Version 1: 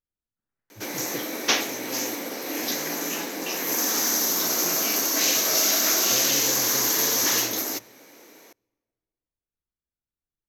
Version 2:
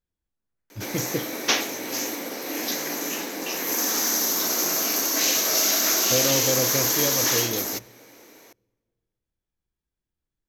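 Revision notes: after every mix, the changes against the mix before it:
first voice +11.5 dB; second voice -3.5 dB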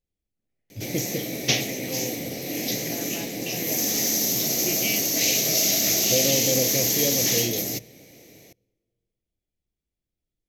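second voice +10.0 dB; background: remove high-pass 250 Hz 24 dB/octave; master: add high-order bell 1.2 kHz -15.5 dB 1.1 oct

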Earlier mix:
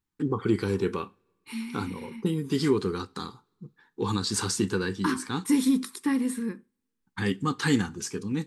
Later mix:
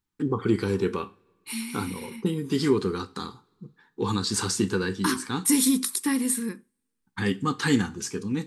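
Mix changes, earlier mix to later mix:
first voice: send +7.5 dB; second voice: remove low-pass 1.8 kHz 6 dB/octave

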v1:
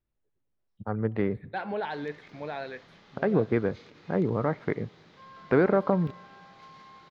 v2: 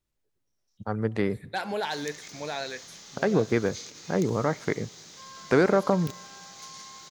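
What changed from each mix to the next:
master: remove distance through air 440 m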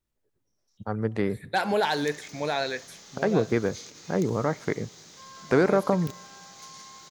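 second voice +6.5 dB; master: add peaking EQ 3.9 kHz -2.5 dB 2.4 oct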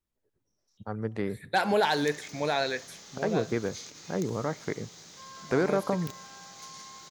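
first voice -5.0 dB

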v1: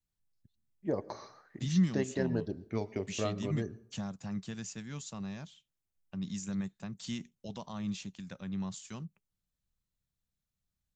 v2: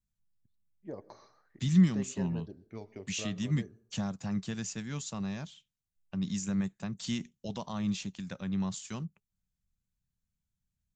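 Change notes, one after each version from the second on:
first voice -9.5 dB; second voice +4.5 dB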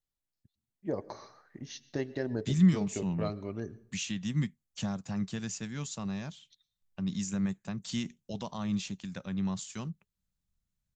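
first voice +8.5 dB; second voice: entry +0.85 s

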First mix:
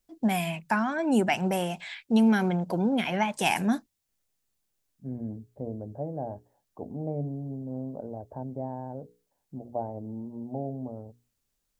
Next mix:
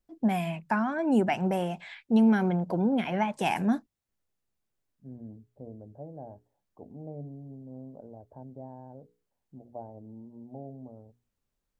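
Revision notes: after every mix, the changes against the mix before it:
second voice -8.5 dB; master: add treble shelf 2.6 kHz -11.5 dB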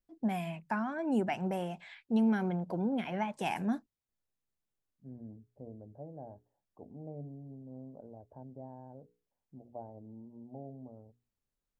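first voice -6.5 dB; second voice -3.5 dB

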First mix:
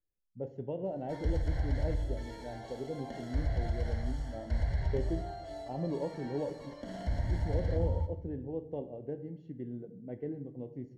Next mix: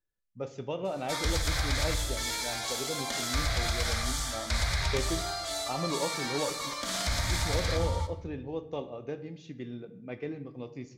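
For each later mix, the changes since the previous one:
master: remove boxcar filter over 36 samples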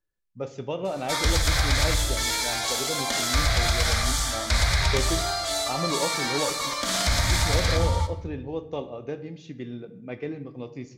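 speech +4.0 dB; background +7.0 dB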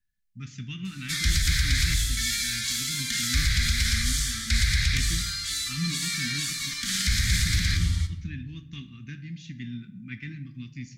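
speech +4.0 dB; master: add Chebyshev band-stop 220–1700 Hz, order 3

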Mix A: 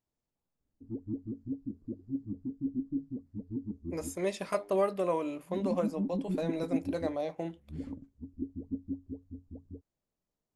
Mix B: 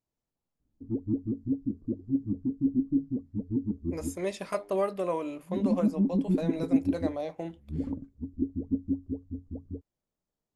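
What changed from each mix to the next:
background +7.5 dB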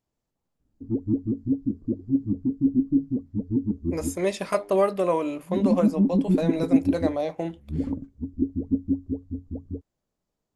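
speech +7.0 dB; background +5.0 dB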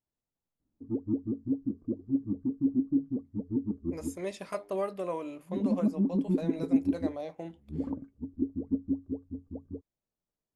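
speech -11.0 dB; background: add tilt EQ +3 dB/octave

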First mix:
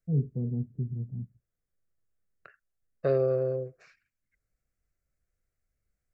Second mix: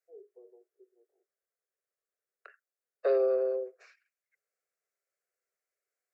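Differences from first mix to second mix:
first voice -9.0 dB; master: add steep high-pass 370 Hz 96 dB/octave

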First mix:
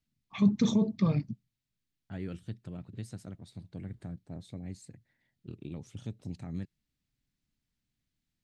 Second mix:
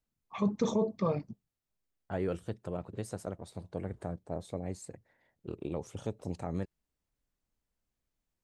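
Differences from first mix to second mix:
second voice +7.5 dB; master: add ten-band graphic EQ 125 Hz -9 dB, 250 Hz -6 dB, 500 Hz +8 dB, 1 kHz +6 dB, 2 kHz -4 dB, 4 kHz -7 dB

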